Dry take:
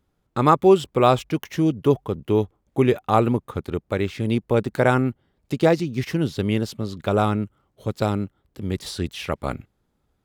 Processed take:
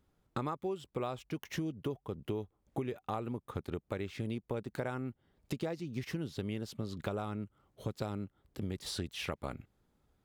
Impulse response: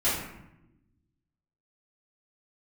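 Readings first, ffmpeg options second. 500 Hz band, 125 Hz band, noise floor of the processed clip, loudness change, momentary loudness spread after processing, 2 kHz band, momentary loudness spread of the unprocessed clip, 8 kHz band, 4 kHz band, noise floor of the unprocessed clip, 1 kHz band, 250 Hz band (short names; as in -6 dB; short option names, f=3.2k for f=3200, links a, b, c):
-19.0 dB, -15.5 dB, -78 dBFS, -17.5 dB, 5 LU, -15.5 dB, 12 LU, -10.0 dB, -11.5 dB, -72 dBFS, -19.5 dB, -16.5 dB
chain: -af "acompressor=threshold=-31dB:ratio=10,volume=-3dB"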